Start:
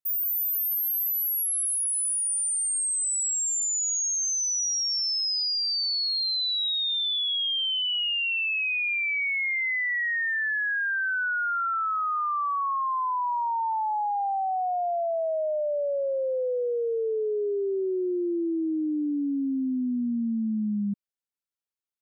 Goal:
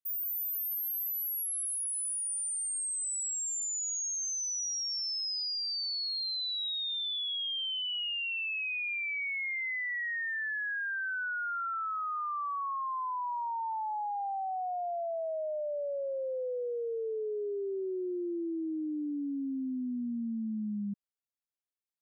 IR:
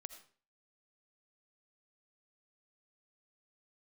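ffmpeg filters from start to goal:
-af "volume=0.422"

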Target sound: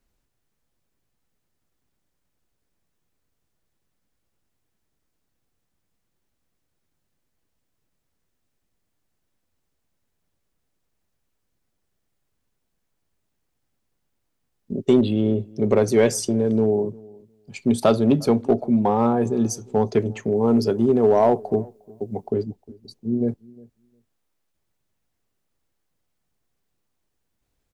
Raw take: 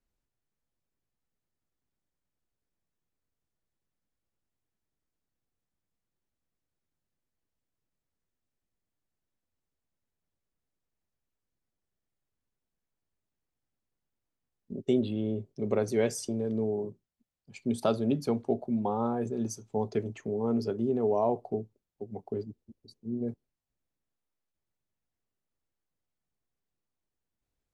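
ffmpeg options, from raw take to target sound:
-filter_complex "[0:a]asettb=1/sr,asplit=3[s0][s1][s2];[s0]atrim=end=20.314[s3];[s1]atrim=start=20.31:end=22.27,asetpts=PTS-STARTPTS,afade=t=in:d=0.004:c=qsin,afade=t=out:st=1.956:d=0.004:c=qsin,highshelf=f=7100:g=8[s4];[s2]atrim=start=22.266[s5];[s3][s4]acrossfade=d=0.004:c1=hsin:c2=qsin[s6];[s6][s5]acrossfade=d=0.004:c1=qsin:c2=hsin,asplit=2[s7][s8];[s8]asoftclip=type=hard:threshold=0.0708,volume=0.631[s9];[s7][s9]amix=inputs=2:normalize=0,asplit=2[s10][s11];[s11]adelay=356,lowpass=f=850:p=1,volume=0.0708,asplit=2[s12][s13];[s13]adelay=356,lowpass=f=850:p=1,volume=0.15[s14];[s10][s12][s14]amix=inputs=3:normalize=0,volume=2.11"

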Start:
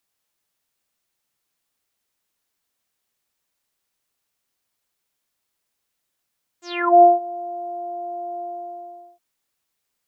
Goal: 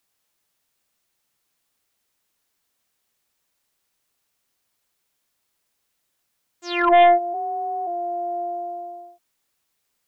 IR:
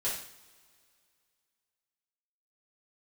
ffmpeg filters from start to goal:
-filter_complex "[0:a]aeval=exprs='0.668*(cos(1*acos(clip(val(0)/0.668,-1,1)))-cos(1*PI/2))+0.0596*(cos(2*acos(clip(val(0)/0.668,-1,1)))-cos(2*PI/2))+0.133*(cos(5*acos(clip(val(0)/0.668,-1,1)))-cos(5*PI/2))':c=same,asplit=3[s0][s1][s2];[s0]afade=t=out:st=7.33:d=0.02[s3];[s1]afreqshift=36,afade=t=in:st=7.33:d=0.02,afade=t=out:st=7.86:d=0.02[s4];[s2]afade=t=in:st=7.86:d=0.02[s5];[s3][s4][s5]amix=inputs=3:normalize=0,volume=0.75"

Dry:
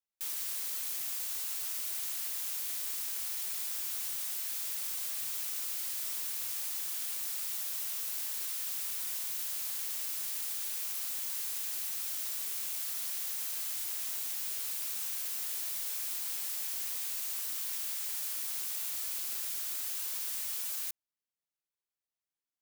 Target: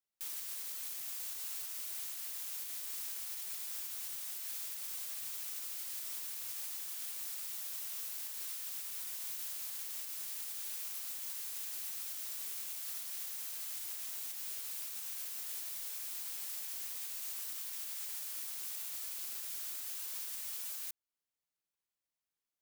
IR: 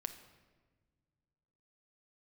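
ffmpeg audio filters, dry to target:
-af "alimiter=level_in=2.37:limit=0.0631:level=0:latency=1:release=307,volume=0.422"

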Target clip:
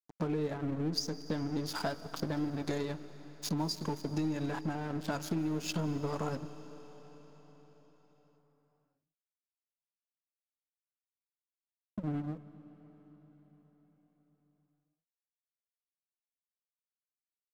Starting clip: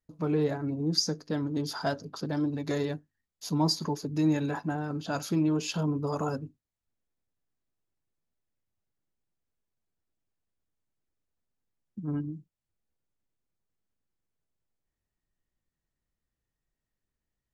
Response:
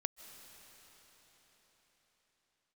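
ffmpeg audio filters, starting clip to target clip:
-filter_complex "[0:a]aeval=exprs='sgn(val(0))*max(abs(val(0))-0.00794,0)':c=same,acompressor=threshold=0.0126:ratio=6,aeval=exprs='0.0531*(cos(1*acos(clip(val(0)/0.0531,-1,1)))-cos(1*PI/2))+0.00106*(cos(8*acos(clip(val(0)/0.0531,-1,1)))-cos(8*PI/2))':c=same,asplit=2[s0][s1];[1:a]atrim=start_sample=2205[s2];[s1][s2]afir=irnorm=-1:irlink=0,volume=1.33[s3];[s0][s3]amix=inputs=2:normalize=0"

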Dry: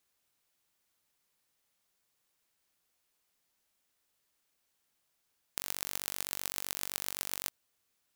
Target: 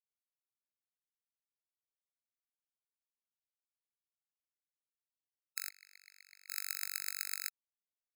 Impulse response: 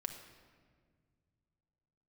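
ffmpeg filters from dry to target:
-filter_complex "[0:a]asettb=1/sr,asplit=3[s0][s1][s2];[s0]atrim=end=5.694[s3];[s1]atrim=start=5.69:end=6.5,asetpts=PTS-STARTPTS,afade=t=in:d=0.004:c=qsin,afade=t=out:st=0.806:d=0.004:c=qsin,bandpass=f=2100:t=q:w=14:csg=0[s4];[s2]atrim=start=6.496[s5];[s3][s4]acrossfade=d=0.004:c1=hsin:c2=qsin[s6];[s6][s5]acrossfade=d=0.004:c1=qsin:c2=hsin,acrusher=bits=5:dc=4:mix=0:aa=0.000001,afftfilt=real='re*eq(mod(floor(b*sr/1024/1300),2),1)':imag='im*eq(mod(floor(b*sr/1024/1300),2),1)':win_size=1024:overlap=0.75,volume=1.19"

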